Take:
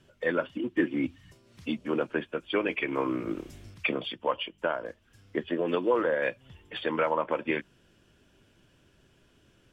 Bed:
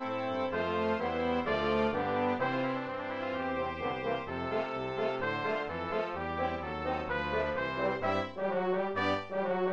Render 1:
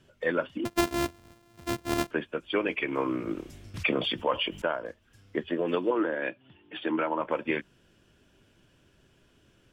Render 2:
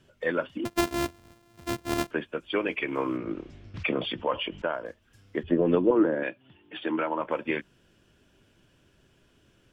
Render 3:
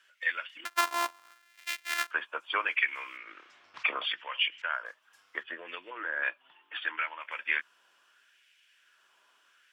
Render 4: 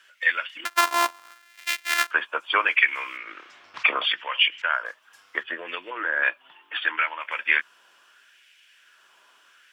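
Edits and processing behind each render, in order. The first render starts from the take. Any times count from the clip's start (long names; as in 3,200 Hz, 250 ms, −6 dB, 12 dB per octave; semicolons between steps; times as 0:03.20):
0:00.65–0:02.11: samples sorted by size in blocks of 128 samples; 0:03.74–0:04.62: envelope flattener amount 50%; 0:05.90–0:07.21: loudspeaker in its box 180–3,300 Hz, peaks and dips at 310 Hz +8 dB, 500 Hz −8 dB, 1,100 Hz −4 dB, 2,000 Hz −5 dB
0:03.17–0:04.73: high-frequency loss of the air 170 metres; 0:05.43–0:06.23: spectral tilt −4 dB per octave
auto-filter high-pass sine 0.73 Hz 980–2,200 Hz
level +8.5 dB; brickwall limiter −3 dBFS, peak gain reduction 2.5 dB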